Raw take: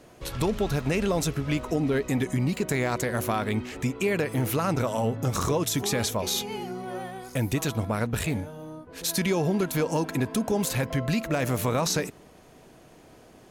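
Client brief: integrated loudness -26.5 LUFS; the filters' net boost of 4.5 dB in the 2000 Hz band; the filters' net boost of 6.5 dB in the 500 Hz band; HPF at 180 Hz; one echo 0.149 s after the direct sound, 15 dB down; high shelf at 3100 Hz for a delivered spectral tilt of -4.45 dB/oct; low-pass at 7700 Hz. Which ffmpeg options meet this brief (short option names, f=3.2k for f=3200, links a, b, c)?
-af "highpass=180,lowpass=7.7k,equalizer=f=500:t=o:g=8,equalizer=f=2k:t=o:g=6.5,highshelf=f=3.1k:g=-4,aecho=1:1:149:0.178,volume=-2dB"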